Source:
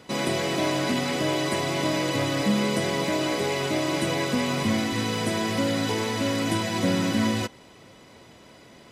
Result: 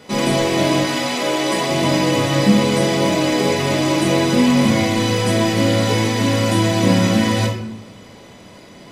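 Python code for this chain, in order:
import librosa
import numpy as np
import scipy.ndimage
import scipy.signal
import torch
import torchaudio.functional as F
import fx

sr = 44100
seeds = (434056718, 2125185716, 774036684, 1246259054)

y = fx.highpass(x, sr, hz=fx.line((0.81, 670.0), (1.68, 190.0)), slope=12, at=(0.81, 1.68), fade=0.02)
y = fx.room_shoebox(y, sr, seeds[0], volume_m3=150.0, walls='mixed', distance_m=1.3)
y = y * 10.0 ** (3.5 / 20.0)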